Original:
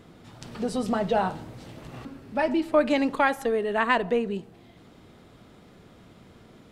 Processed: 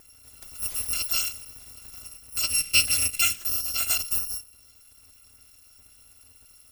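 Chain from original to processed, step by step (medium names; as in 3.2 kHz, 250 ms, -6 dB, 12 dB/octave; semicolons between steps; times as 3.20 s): bit-reversed sample order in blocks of 256 samples; 2.50–3.38 s: fifteen-band graphic EQ 160 Hz +9 dB, 1 kHz -9 dB, 2.5 kHz +9 dB, 10 kHz +3 dB; trim -2.5 dB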